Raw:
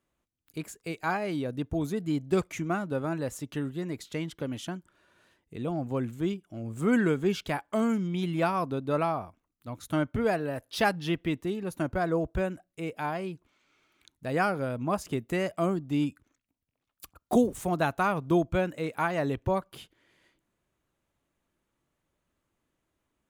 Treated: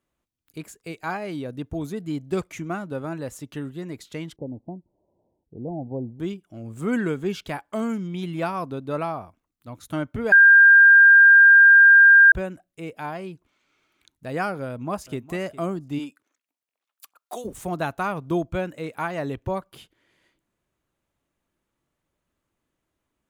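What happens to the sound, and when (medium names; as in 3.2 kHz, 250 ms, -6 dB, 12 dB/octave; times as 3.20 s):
4.36–6.20 s: steep low-pass 880 Hz 72 dB/octave
10.32–12.32 s: bleep 1.6 kHz -8 dBFS
14.66–15.21 s: echo throw 410 ms, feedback 20%, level -17 dB
15.98–17.44 s: high-pass 350 Hz -> 940 Hz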